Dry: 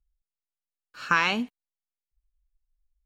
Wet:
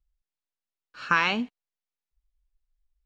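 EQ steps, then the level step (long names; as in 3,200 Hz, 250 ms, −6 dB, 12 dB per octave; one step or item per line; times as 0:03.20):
low-pass filter 5,400 Hz 12 dB per octave
0.0 dB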